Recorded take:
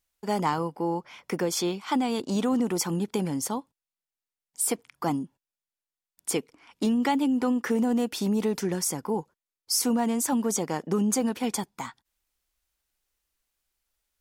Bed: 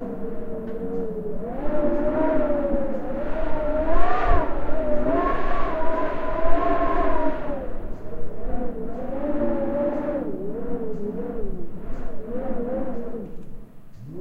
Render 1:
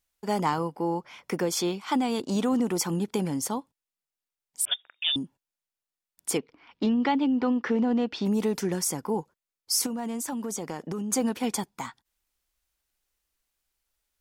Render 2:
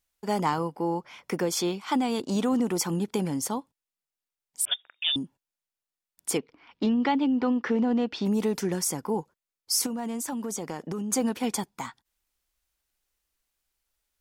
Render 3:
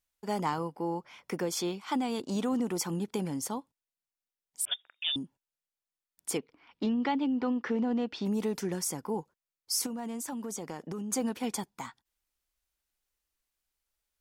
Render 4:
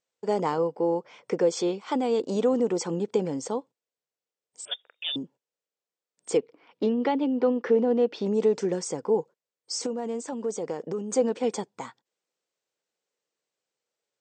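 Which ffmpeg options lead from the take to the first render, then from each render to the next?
ffmpeg -i in.wav -filter_complex "[0:a]asettb=1/sr,asplit=3[link_01][link_02][link_03];[link_01]atrim=end=4.654[link_04];[link_02]atrim=start=4.65:end=5.16,asetpts=PTS-STARTPTS,afade=type=in:duration=0.004:curve=qsin,afade=type=out:start_time=0.506:duration=0.004:curve=qsin,lowpass=frequency=3200:width_type=q:width=0.5098,lowpass=frequency=3200:width_type=q:width=0.6013,lowpass=frequency=3200:width_type=q:width=0.9,lowpass=frequency=3200:width_type=q:width=2.563,afreqshift=-3800[link_05];[link_03]atrim=start=5.156[link_06];[link_04][link_05]acrossfade=duration=0.004:curve1=hsin:curve2=qsin[link_07];[link_07][link_06]acrossfade=duration=0.004:curve1=qsin:curve2=hsin,asplit=3[link_08][link_09][link_10];[link_08]afade=type=out:start_time=6.37:duration=0.02[link_11];[link_09]lowpass=frequency=4500:width=0.5412,lowpass=frequency=4500:width=1.3066,afade=type=in:start_time=6.37:duration=0.02,afade=type=out:start_time=8.25:duration=0.02[link_12];[link_10]afade=type=in:start_time=8.25:duration=0.02[link_13];[link_11][link_12][link_13]amix=inputs=3:normalize=0,asettb=1/sr,asplit=3[link_14][link_15][link_16];[link_14]atrim=end=9.864[link_17];[link_15]atrim=start=9.86:end=11.12,asetpts=PTS-STARTPTS,afade=type=in:duration=0.004:curve=qsin,afade=type=out:start_time=1.256:duration=0.004:curve=qsin,acompressor=threshold=-29dB:ratio=6:attack=3.2:release=140:knee=1:detection=peak[link_18];[link_16]atrim=start=11.116[link_19];[link_17][link_18]acrossfade=duration=0.004:curve1=hsin:curve2=qsin[link_20];[link_20][link_19]acrossfade=duration=0.004:curve1=qsin:curve2=hsin" out.wav
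ffmpeg -i in.wav -af anull out.wav
ffmpeg -i in.wav -af "volume=-5dB" out.wav
ffmpeg -i in.wav -af "afftfilt=real='re*between(b*sr/4096,110,8500)':imag='im*between(b*sr/4096,110,8500)':win_size=4096:overlap=0.75,equalizer=frequency=480:width=1.7:gain=14" out.wav

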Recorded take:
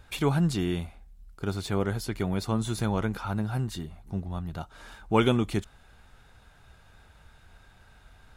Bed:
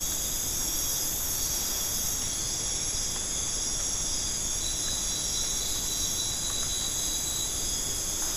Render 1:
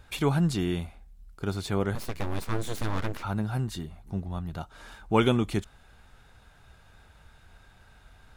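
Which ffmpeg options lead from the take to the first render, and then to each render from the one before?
ffmpeg -i in.wav -filter_complex "[0:a]asettb=1/sr,asplit=3[link_01][link_02][link_03];[link_01]atrim=end=1.954[link_04];[link_02]atrim=start=1.95:end=3.23,asetpts=PTS-STARTPTS,afade=type=in:duration=0.004:curve=qsin,afade=type=out:start_time=1.276:duration=0.004:curve=qsin,aeval=exprs='abs(val(0))':channel_layout=same[link_05];[link_03]atrim=start=3.226[link_06];[link_04][link_05]acrossfade=duration=0.004:curve1=hsin:curve2=qsin[link_07];[link_07][link_06]acrossfade=duration=0.004:curve1=qsin:curve2=hsin" out.wav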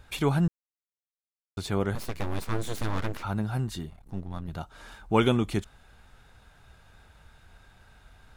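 ffmpeg -i in.wav -filter_complex "[0:a]asettb=1/sr,asplit=3[link_01][link_02][link_03];[link_01]atrim=end=3.904[link_04];[link_02]atrim=start=3.9:end=4.48,asetpts=PTS-STARTPTS,afade=type=in:duration=0.004:curve=qsin,afade=type=out:start_time=0.576:duration=0.004:curve=qsin,aeval=exprs='if(lt(val(0),0),0.251*val(0),val(0))':channel_layout=same[link_05];[link_03]atrim=start=4.476[link_06];[link_04][link_05]acrossfade=duration=0.004:curve1=hsin:curve2=qsin[link_07];[link_07][link_06]acrossfade=duration=0.004:curve1=qsin:curve2=hsin,asplit=3[link_08][link_09][link_10];[link_08]atrim=end=0.48,asetpts=PTS-STARTPTS,afade=type=out:start_time=0.476:duration=0.004:curve=hsin[link_11];[link_09]atrim=start=0.48:end=1.57,asetpts=PTS-STARTPTS,volume=0[link_12];[link_10]atrim=start=1.57,asetpts=PTS-STARTPTS,afade=type=in:duration=0.004:curve=hsin[link_13];[link_11][link_12][link_13]concat=n=3:v=0:a=1" out.wav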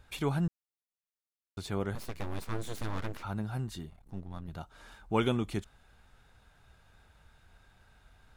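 ffmpeg -i in.wav -af "volume=-6dB" out.wav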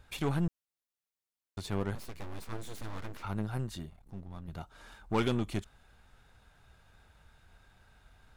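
ffmpeg -i in.wav -af "aeval=exprs='0.158*(cos(1*acos(clip(val(0)/0.158,-1,1)))-cos(1*PI/2))+0.0126*(cos(8*acos(clip(val(0)/0.158,-1,1)))-cos(8*PI/2))':channel_layout=same,asoftclip=type=tanh:threshold=-18.5dB" out.wav

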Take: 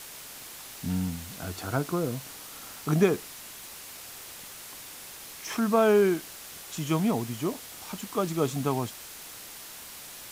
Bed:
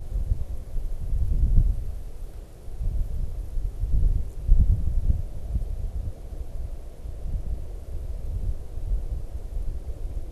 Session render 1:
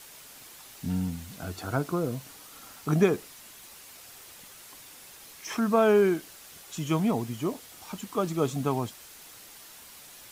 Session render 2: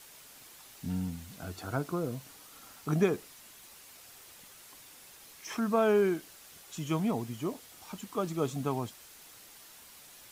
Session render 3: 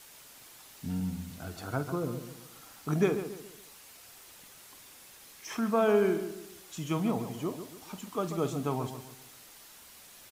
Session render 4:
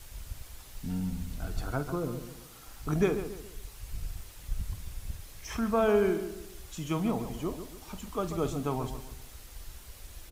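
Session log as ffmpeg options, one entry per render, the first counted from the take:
ffmpeg -i in.wav -af "afftdn=noise_reduction=6:noise_floor=-44" out.wav
ffmpeg -i in.wav -af "volume=-4.5dB" out.wav
ffmpeg -i in.wav -filter_complex "[0:a]asplit=2[link_01][link_02];[link_02]adelay=48,volume=-13dB[link_03];[link_01][link_03]amix=inputs=2:normalize=0,asplit=2[link_04][link_05];[link_05]adelay=140,lowpass=frequency=2000:poles=1,volume=-9dB,asplit=2[link_06][link_07];[link_07]adelay=140,lowpass=frequency=2000:poles=1,volume=0.39,asplit=2[link_08][link_09];[link_09]adelay=140,lowpass=frequency=2000:poles=1,volume=0.39,asplit=2[link_10][link_11];[link_11]adelay=140,lowpass=frequency=2000:poles=1,volume=0.39[link_12];[link_04][link_06][link_08][link_10][link_12]amix=inputs=5:normalize=0" out.wav
ffmpeg -i in.wav -i bed.wav -filter_complex "[1:a]volume=-16dB[link_01];[0:a][link_01]amix=inputs=2:normalize=0" out.wav

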